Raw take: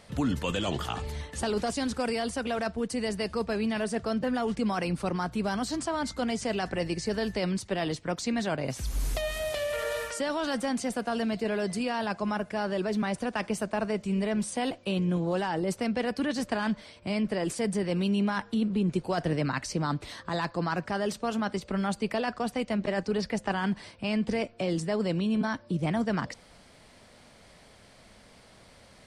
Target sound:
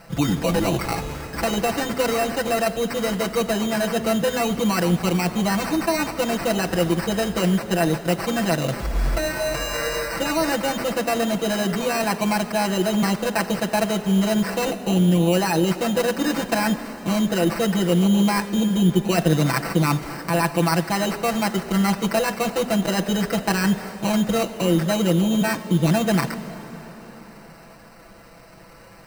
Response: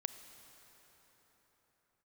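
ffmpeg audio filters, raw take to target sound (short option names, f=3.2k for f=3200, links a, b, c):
-filter_complex "[0:a]acrusher=samples=13:mix=1:aa=0.000001,asplit=2[a][b];[1:a]atrim=start_sample=2205,adelay=6[c];[b][c]afir=irnorm=-1:irlink=0,volume=3dB[d];[a][d]amix=inputs=2:normalize=0,volume=4.5dB"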